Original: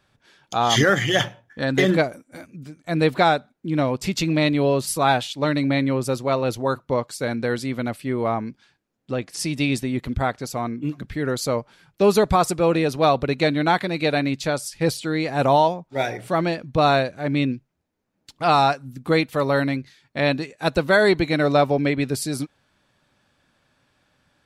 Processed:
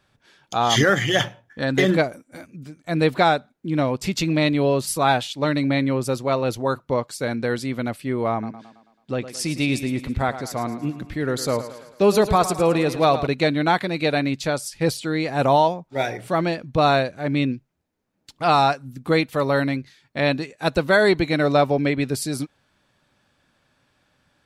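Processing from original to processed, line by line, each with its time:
0:08.32–0:13.27: feedback echo with a high-pass in the loop 109 ms, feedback 53%, high-pass 160 Hz, level −12 dB

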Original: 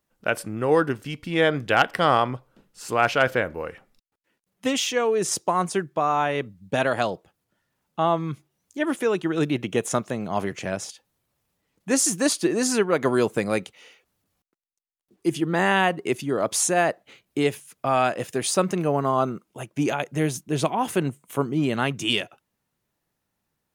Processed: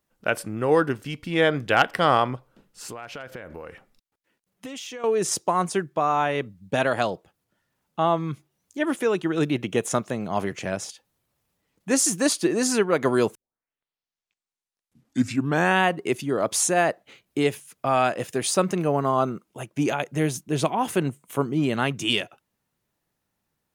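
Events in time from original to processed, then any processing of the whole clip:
0:02.35–0:05.04: downward compressor 12 to 1, threshold −33 dBFS
0:13.35: tape start 2.48 s

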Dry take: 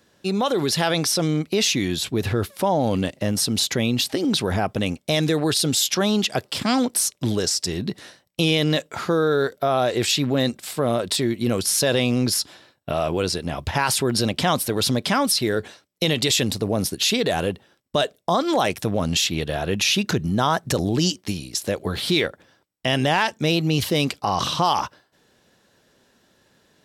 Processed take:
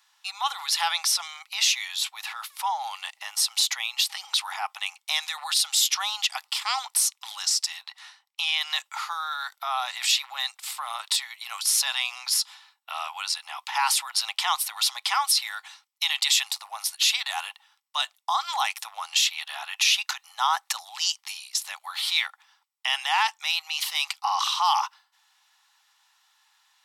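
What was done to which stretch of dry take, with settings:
0:07.83–0:08.61: high-shelf EQ 7,100 Hz −10 dB
whole clip: Chebyshev high-pass filter 810 Hz, order 6; notch filter 1,600 Hz, Q 7.7

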